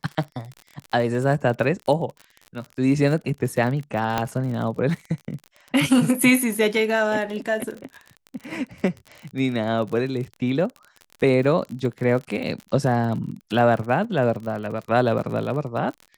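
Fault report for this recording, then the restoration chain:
surface crackle 39 per second −30 dBFS
0:04.18: click −8 dBFS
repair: click removal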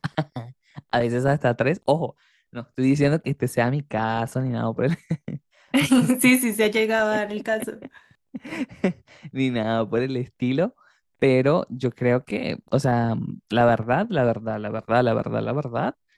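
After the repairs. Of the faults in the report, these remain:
none of them is left

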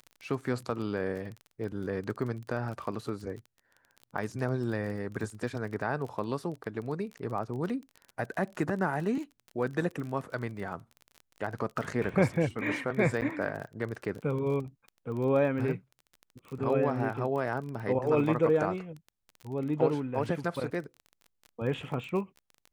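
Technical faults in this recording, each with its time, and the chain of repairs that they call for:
surface crackle 25 per second −37 dBFS
0:13.21–0:13.22: drop-out 9 ms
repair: click removal
repair the gap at 0:13.21, 9 ms

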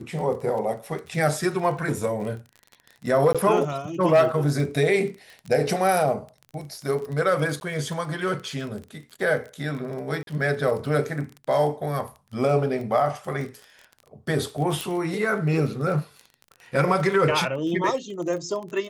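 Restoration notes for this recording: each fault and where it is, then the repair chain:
surface crackle 24 per second −32 dBFS
0:03.33–0:03.35: drop-out 16 ms
0:07.60–0:07.61: drop-out 11 ms
0:10.23–0:10.27: drop-out 42 ms
0:14.81: click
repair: click removal
repair the gap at 0:03.33, 16 ms
repair the gap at 0:07.60, 11 ms
repair the gap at 0:10.23, 42 ms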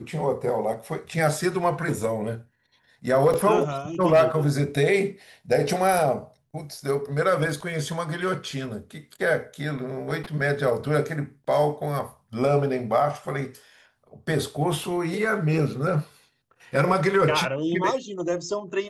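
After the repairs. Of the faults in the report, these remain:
none of them is left

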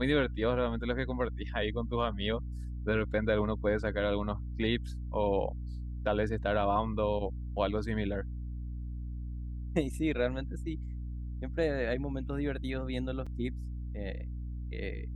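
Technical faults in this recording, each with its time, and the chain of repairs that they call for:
mains hum 60 Hz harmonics 5 −38 dBFS
0:13.26–0:13.27: drop-out 5.4 ms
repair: hum removal 60 Hz, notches 5
repair the gap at 0:13.26, 5.4 ms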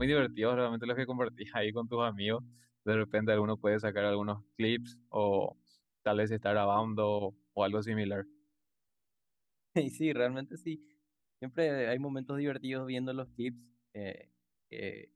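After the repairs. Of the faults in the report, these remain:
none of them is left

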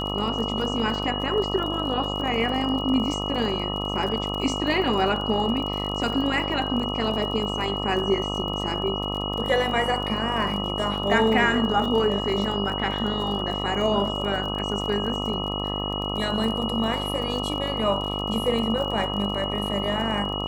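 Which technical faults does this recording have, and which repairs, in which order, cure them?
mains buzz 50 Hz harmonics 26 −30 dBFS
surface crackle 42 per second −31 dBFS
whistle 2,900 Hz −30 dBFS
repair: click removal
hum removal 50 Hz, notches 26
notch filter 2,900 Hz, Q 30

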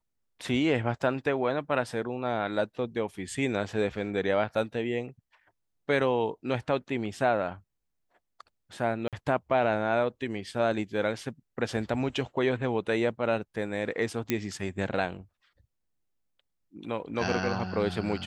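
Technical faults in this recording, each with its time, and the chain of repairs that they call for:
0:09.08–0:09.13: drop-out 47 ms
0:14.30: click −11 dBFS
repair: click removal
repair the gap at 0:09.08, 47 ms

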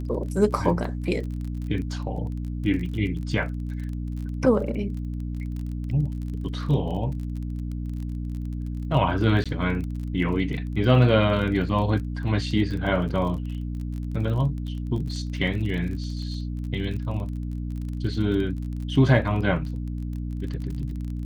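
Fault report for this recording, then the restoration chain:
surface crackle 30 per second −33 dBFS
mains hum 60 Hz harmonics 5 −30 dBFS
0:09.44–0:09.46: drop-out 16 ms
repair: click removal
hum removal 60 Hz, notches 5
repair the gap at 0:09.44, 16 ms

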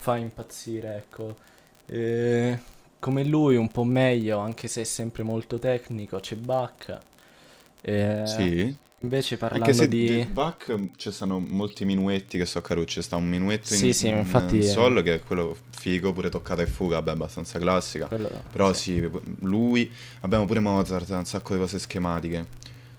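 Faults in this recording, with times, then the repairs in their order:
surface crackle 31 per second −33 dBFS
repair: click removal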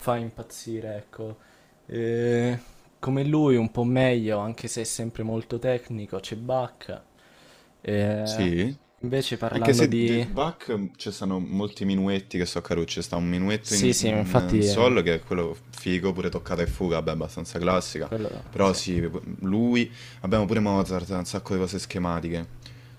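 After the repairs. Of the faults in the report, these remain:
none of them is left

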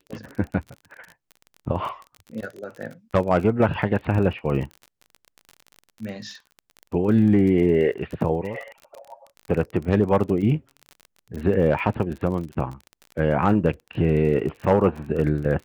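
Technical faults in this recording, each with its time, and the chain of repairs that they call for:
surface crackle 33 per second −31 dBFS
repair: click removal

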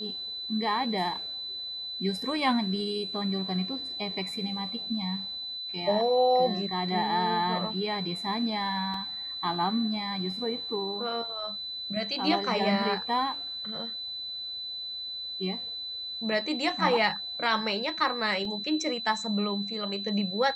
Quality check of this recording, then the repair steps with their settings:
whistle 4,000 Hz −34 dBFS
0:08.94: drop-out 2.9 ms
0:18.45: drop-out 2.8 ms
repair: notch filter 4,000 Hz, Q 30
repair the gap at 0:08.94, 2.9 ms
repair the gap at 0:18.45, 2.8 ms

